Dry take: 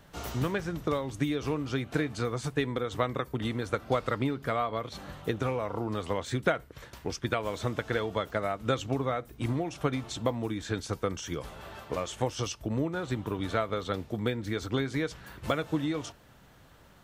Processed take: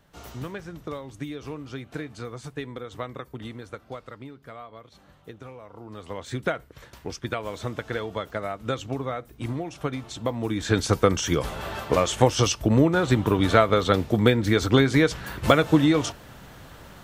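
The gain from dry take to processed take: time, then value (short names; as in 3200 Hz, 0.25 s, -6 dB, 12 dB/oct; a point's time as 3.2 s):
3.41 s -5 dB
4.14 s -12 dB
5.71 s -12 dB
6.35 s 0 dB
10.2 s 0 dB
10.8 s +11.5 dB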